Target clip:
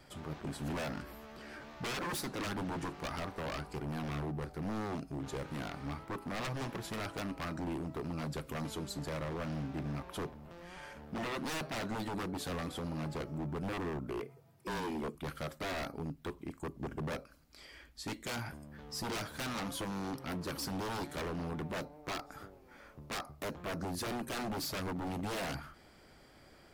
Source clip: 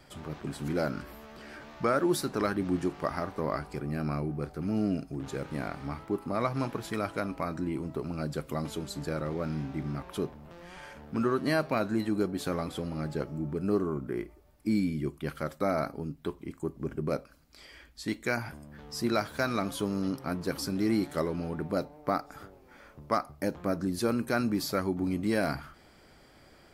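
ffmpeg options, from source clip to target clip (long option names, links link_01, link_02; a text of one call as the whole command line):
ffmpeg -i in.wav -filter_complex "[0:a]asettb=1/sr,asplit=3[link_01][link_02][link_03];[link_01]atrim=end=14.204[link_04];[link_02]atrim=start=14.2:end=15.15,asetpts=PTS-STARTPTS,afade=type=in:duration=0.004:curve=qsin,afade=type=out:start_time=0.946:duration=0.004:curve=qsin,afreqshift=78[link_05];[link_03]atrim=start=15.146[link_06];[link_04][link_05]acrossfade=duration=0.004:curve1=hsin:curve2=qsin[link_07];[link_07][link_06]acrossfade=duration=0.004:curve1=qsin:curve2=hsin,aeval=exprs='0.0316*(abs(mod(val(0)/0.0316+3,4)-2)-1)':channel_layout=same,volume=-2.5dB" out.wav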